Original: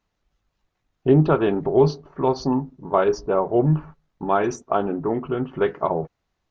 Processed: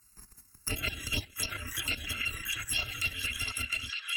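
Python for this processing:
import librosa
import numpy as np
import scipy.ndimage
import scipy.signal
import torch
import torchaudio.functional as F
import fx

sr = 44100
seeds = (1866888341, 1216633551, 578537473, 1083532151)

p1 = fx.bit_reversed(x, sr, seeds[0], block=256)
p2 = scipy.signal.sosfilt(scipy.signal.butter(2, 69.0, 'highpass', fs=sr, output='sos'), p1)
p3 = fx.env_lowpass_down(p2, sr, base_hz=1800.0, full_db=-17.0)
p4 = fx.high_shelf(p3, sr, hz=2200.0, db=8.0)
p5 = fx.echo_pitch(p4, sr, ms=302, semitones=3, count=2, db_per_echo=-6.0)
p6 = fx.level_steps(p5, sr, step_db=14)
p7 = fx.chorus_voices(p6, sr, voices=6, hz=0.61, base_ms=27, depth_ms=2.7, mix_pct=55)
p8 = fx.stretch_grains(p7, sr, factor=0.64, grain_ms=65.0)
p9 = fx.env_phaser(p8, sr, low_hz=580.0, high_hz=3500.0, full_db=-23.5)
p10 = p9 + fx.echo_stepped(p9, sr, ms=683, hz=1400.0, octaves=0.7, feedback_pct=70, wet_db=-0.5, dry=0)
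p11 = fx.band_squash(p10, sr, depth_pct=70)
y = F.gain(torch.from_numpy(p11), 7.0).numpy()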